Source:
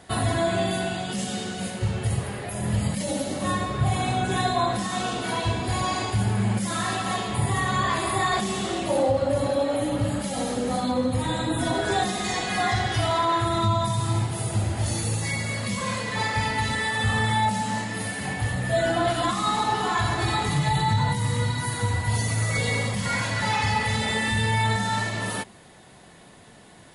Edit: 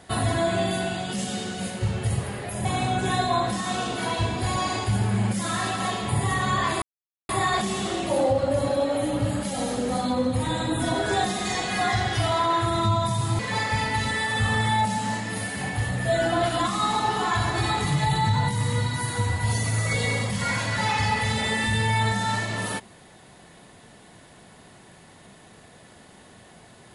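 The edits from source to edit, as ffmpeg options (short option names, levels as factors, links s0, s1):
-filter_complex "[0:a]asplit=4[s0][s1][s2][s3];[s0]atrim=end=2.652[s4];[s1]atrim=start=3.908:end=8.08,asetpts=PTS-STARTPTS,afade=t=out:st=4.168:d=0.004:c=hsin,apad=pad_dur=0.47[s5];[s2]atrim=start=8.08:end=14.182,asetpts=PTS-STARTPTS,afade=t=in:d=0.004:c=hsin[s6];[s3]atrim=start=16.028[s7];[s5][s6]concat=n=2:v=0:a=1[s8];[s4][s8]acrossfade=d=0.004:c1=hsin:c2=hsin[s9];[s9][s7]acrossfade=d=0.004:c1=hsin:c2=hsin"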